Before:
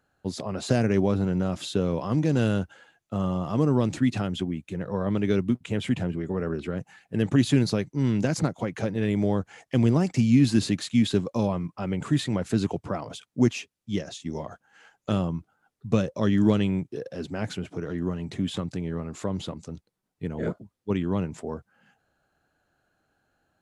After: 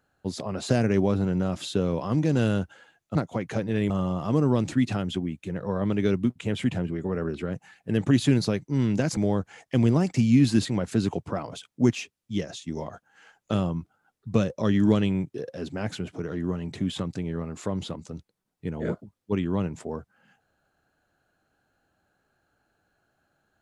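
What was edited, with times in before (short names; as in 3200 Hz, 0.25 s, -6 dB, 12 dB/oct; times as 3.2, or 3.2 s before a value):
8.42–9.17 move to 3.15
10.65–12.23 cut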